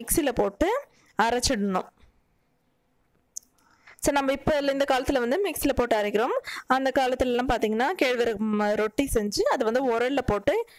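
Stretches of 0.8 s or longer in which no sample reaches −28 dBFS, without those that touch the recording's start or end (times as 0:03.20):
0:01.81–0:03.37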